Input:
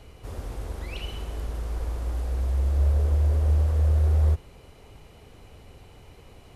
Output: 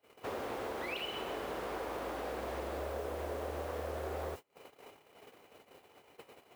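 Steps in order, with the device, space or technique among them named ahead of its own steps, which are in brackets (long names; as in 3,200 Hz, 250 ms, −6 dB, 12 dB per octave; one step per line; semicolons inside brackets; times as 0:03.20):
baby monitor (band-pass filter 370–3,100 Hz; downward compressor 10 to 1, threshold −45 dBFS, peak gain reduction 11 dB; white noise bed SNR 18 dB; noise gate −53 dBFS, range −33 dB)
level +9.5 dB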